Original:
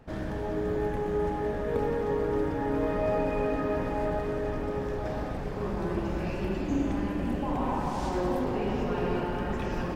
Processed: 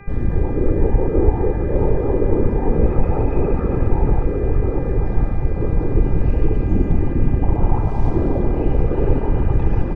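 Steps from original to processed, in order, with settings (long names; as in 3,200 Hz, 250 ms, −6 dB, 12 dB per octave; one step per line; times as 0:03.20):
comb filter 2.4 ms, depth 76%
random phases in short frames
spectral tilt −4.5 dB per octave
hum with harmonics 400 Hz, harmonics 6, −44 dBFS −1 dB per octave
level −1.5 dB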